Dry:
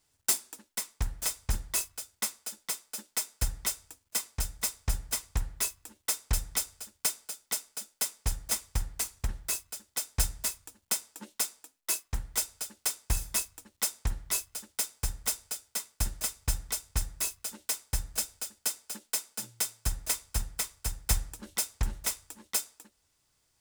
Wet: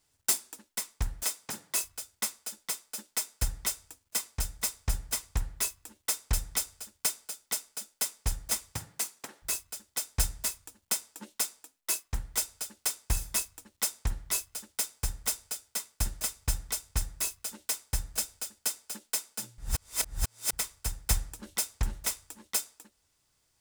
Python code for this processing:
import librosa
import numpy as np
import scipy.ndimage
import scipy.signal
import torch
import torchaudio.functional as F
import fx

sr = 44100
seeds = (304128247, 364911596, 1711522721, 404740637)

y = fx.highpass(x, sr, hz=190.0, slope=24, at=(1.23, 1.83))
y = fx.highpass(y, sr, hz=fx.line((8.72, 91.0), (9.42, 350.0)), slope=24, at=(8.72, 9.42), fade=0.02)
y = fx.edit(y, sr, fx.reverse_span(start_s=19.58, length_s=0.95), tone=tone)